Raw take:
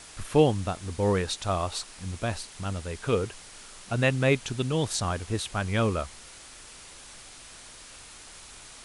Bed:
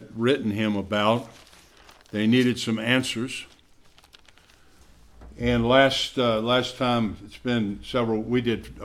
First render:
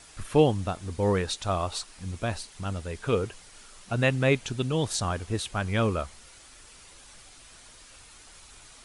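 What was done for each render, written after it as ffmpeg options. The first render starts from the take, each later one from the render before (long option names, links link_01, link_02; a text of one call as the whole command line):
ffmpeg -i in.wav -af "afftdn=noise_reduction=6:noise_floor=-48" out.wav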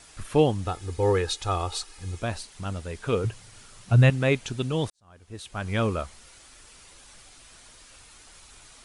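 ffmpeg -i in.wav -filter_complex "[0:a]asettb=1/sr,asplit=3[link_01][link_02][link_03];[link_01]atrim=end=0.654[link_04];[link_02]atrim=start=0.65:end=2.22,asetpts=PTS-STARTPTS,afade=type=in:duration=0.004:curve=qsin,afade=type=out:start_time=1.566:duration=0.004:curve=qsin,aecho=1:1:2.4:0.65,atrim=end_sample=69237[link_05];[link_03]atrim=start=2.216[link_06];[link_04][link_05]acrossfade=duration=0.004:curve1=hsin:curve2=qsin[link_07];[link_07][link_06]acrossfade=duration=0.004:curve1=qsin:curve2=hsin,asettb=1/sr,asplit=3[link_08][link_09][link_10];[link_08]atrim=end=3.244[link_11];[link_09]atrim=start=3.24:end=4.1,asetpts=PTS-STARTPTS,afade=type=in:duration=0.004:curve=qsin,afade=type=out:start_time=0.856:duration=0.004:curve=qsin,equalizer=frequency=110:width_type=o:width=1:gain=14.5[link_12];[link_10]atrim=start=4.096[link_13];[link_11][link_12]acrossfade=duration=0.004:curve1=hsin:curve2=qsin[link_14];[link_14][link_13]acrossfade=duration=0.004:curve1=qsin:curve2=hsin,asplit=2[link_15][link_16];[link_15]atrim=end=4.9,asetpts=PTS-STARTPTS,afade=type=out:start_time=4.896:duration=0.004:curve=hsin[link_17];[link_16]atrim=start=4.9,asetpts=PTS-STARTPTS,afade=type=in:duration=0.83:curve=qua[link_18];[link_17][link_18]concat=n=2:v=0:a=1" out.wav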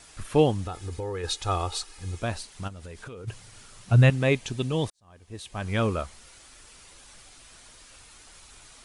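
ffmpeg -i in.wav -filter_complex "[0:a]asplit=3[link_01][link_02][link_03];[link_01]afade=type=out:start_time=0.64:duration=0.02[link_04];[link_02]acompressor=threshold=-29dB:ratio=6:attack=3.2:release=140:knee=1:detection=peak,afade=type=in:start_time=0.64:duration=0.02,afade=type=out:start_time=1.23:duration=0.02[link_05];[link_03]afade=type=in:start_time=1.23:duration=0.02[link_06];[link_04][link_05][link_06]amix=inputs=3:normalize=0,asplit=3[link_07][link_08][link_09];[link_07]afade=type=out:start_time=2.67:duration=0.02[link_10];[link_08]acompressor=threshold=-37dB:ratio=16:attack=3.2:release=140:knee=1:detection=peak,afade=type=in:start_time=2.67:duration=0.02,afade=type=out:start_time=3.27:duration=0.02[link_11];[link_09]afade=type=in:start_time=3.27:duration=0.02[link_12];[link_10][link_11][link_12]amix=inputs=3:normalize=0,asettb=1/sr,asplit=3[link_13][link_14][link_15];[link_13]atrim=end=4.214[link_16];[link_14]atrim=start=4.21:end=5.62,asetpts=PTS-STARTPTS,afade=type=in:duration=0.004:curve=qsin,afade=type=out:start_time=1.406:duration=0.004:curve=qsin,bandreject=frequency=1400:width=7.1[link_17];[link_15]atrim=start=5.616[link_18];[link_16][link_17]acrossfade=duration=0.004:curve1=hsin:curve2=qsin[link_19];[link_19][link_18]acrossfade=duration=0.004:curve1=qsin:curve2=hsin" out.wav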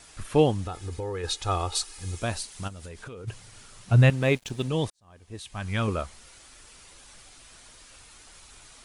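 ffmpeg -i in.wav -filter_complex "[0:a]asettb=1/sr,asplit=3[link_01][link_02][link_03];[link_01]atrim=end=1.754[link_04];[link_02]atrim=start=1.75:end=2.89,asetpts=PTS-STARTPTS,afade=type=in:duration=0.004:curve=qsin,afade=type=out:start_time=1.136:duration=0.004:curve=qsin,highshelf=frequency=4800:gain=8[link_05];[link_03]atrim=start=2.886[link_06];[link_04][link_05]acrossfade=duration=0.004:curve1=hsin:curve2=qsin[link_07];[link_07][link_06]acrossfade=duration=0.004:curve1=qsin:curve2=hsin,asettb=1/sr,asplit=3[link_08][link_09][link_10];[link_08]atrim=end=3.924[link_11];[link_09]atrim=start=3.92:end=4.68,asetpts=PTS-STARTPTS,afade=type=in:duration=0.004:curve=qsin,afade=type=out:start_time=0.756:duration=0.004:curve=qsin,aeval=exprs='sgn(val(0))*max(abs(val(0))-0.00596,0)':channel_layout=same[link_12];[link_10]atrim=start=4.676[link_13];[link_11][link_12]acrossfade=duration=0.004:curve1=hsin:curve2=qsin[link_14];[link_14][link_13]acrossfade=duration=0.004:curve1=qsin:curve2=hsin,asettb=1/sr,asplit=3[link_15][link_16][link_17];[link_15]atrim=end=5.394[link_18];[link_16]atrim=start=5.39:end=5.88,asetpts=PTS-STARTPTS,afade=type=in:duration=0.004:curve=qsin,afade=type=out:start_time=0.486:duration=0.004:curve=qsin,equalizer=frequency=450:width=1.1:gain=-8[link_19];[link_17]atrim=start=5.876[link_20];[link_18][link_19]acrossfade=duration=0.004:curve1=hsin:curve2=qsin[link_21];[link_21][link_20]acrossfade=duration=0.004:curve1=qsin:curve2=hsin" out.wav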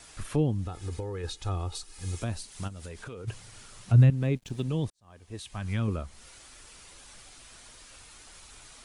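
ffmpeg -i in.wav -filter_complex "[0:a]acrossover=split=320[link_01][link_02];[link_02]acompressor=threshold=-39dB:ratio=4[link_03];[link_01][link_03]amix=inputs=2:normalize=0" out.wav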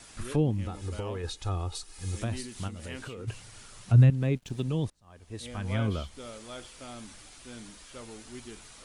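ffmpeg -i in.wav -i bed.wav -filter_complex "[1:a]volume=-21.5dB[link_01];[0:a][link_01]amix=inputs=2:normalize=0" out.wav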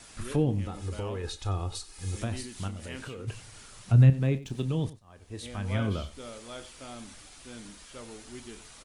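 ffmpeg -i in.wav -filter_complex "[0:a]asplit=2[link_01][link_02];[link_02]adelay=30,volume=-13dB[link_03];[link_01][link_03]amix=inputs=2:normalize=0,asplit=2[link_04][link_05];[link_05]adelay=93.29,volume=-17dB,highshelf=frequency=4000:gain=-2.1[link_06];[link_04][link_06]amix=inputs=2:normalize=0" out.wav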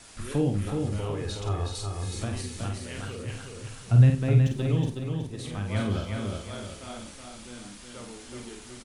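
ffmpeg -i in.wav -filter_complex "[0:a]asplit=2[link_01][link_02];[link_02]adelay=49,volume=-5.5dB[link_03];[link_01][link_03]amix=inputs=2:normalize=0,aecho=1:1:370|740|1110|1480|1850:0.596|0.226|0.086|0.0327|0.0124" out.wav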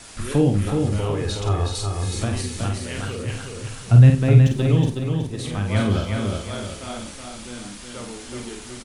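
ffmpeg -i in.wav -af "volume=7.5dB,alimiter=limit=-3dB:level=0:latency=1" out.wav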